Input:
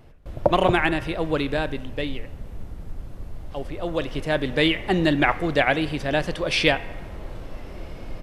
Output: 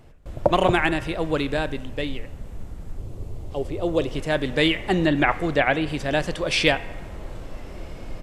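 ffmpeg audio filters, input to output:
ffmpeg -i in.wav -filter_complex "[0:a]asettb=1/sr,asplit=3[link_01][link_02][link_03];[link_01]atrim=end=2.984[link_04];[link_02]atrim=start=2.98:end=4.16,asetpts=PTS-STARTPTS,afade=type=in:duration=0.004:curve=qsin,afade=type=out:start_time=1.176:duration=0.004:curve=qsin,equalizer=frequency=100:width_type=o:width=0.67:gain=8,equalizer=frequency=400:width_type=o:width=0.67:gain=8,equalizer=frequency=1600:width_type=o:width=0.67:gain=-7[link_05];[link_03]atrim=start=4.156[link_06];[link_04][link_05]acrossfade=duration=0.004:curve1=hsin:curve2=qsin[link_07];[link_07][link_06]acrossfade=duration=0.004:curve1=qsin:curve2=hsin,asettb=1/sr,asplit=3[link_08][link_09][link_10];[link_08]atrim=end=4.944[link_11];[link_09]atrim=start=4.94:end=5.89,asetpts=PTS-STARTPTS,afade=type=in:duration=0.004:curve=qsin,afade=type=out:start_time=0.946:duration=0.004:curve=qsin,acrossover=split=3500[link_12][link_13];[link_13]acompressor=threshold=-45dB:ratio=4:attack=1:release=60[link_14];[link_12][link_14]amix=inputs=2:normalize=0[link_15];[link_10]atrim=start=5.886[link_16];[link_11][link_15]acrossfade=duration=0.004:curve1=hsin:curve2=qsin[link_17];[link_17][link_16]acrossfade=duration=0.004:curve1=qsin:curve2=hsin,equalizer=frequency=7500:width_type=o:width=0.5:gain=6.5" out.wav

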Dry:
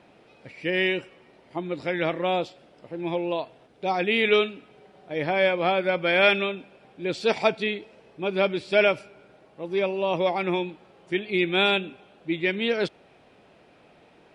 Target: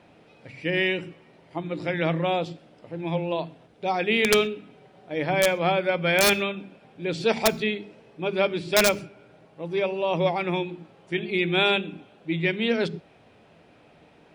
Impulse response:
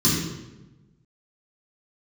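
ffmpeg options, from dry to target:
-filter_complex "[0:a]aeval=exprs='(mod(3.35*val(0)+1,2)-1)/3.35':channel_layout=same,asplit=2[link_01][link_02];[1:a]atrim=start_sample=2205,atrim=end_sample=6174,lowshelf=frequency=320:gain=11[link_03];[link_02][link_03]afir=irnorm=-1:irlink=0,volume=-36dB[link_04];[link_01][link_04]amix=inputs=2:normalize=0"

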